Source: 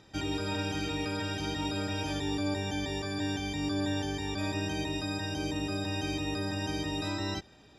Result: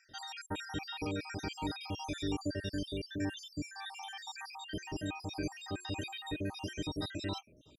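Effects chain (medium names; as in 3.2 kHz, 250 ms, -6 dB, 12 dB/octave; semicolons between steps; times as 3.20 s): random holes in the spectrogram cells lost 67%; 4.69–6.89 s: de-hum 359.8 Hz, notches 16; trim -1.5 dB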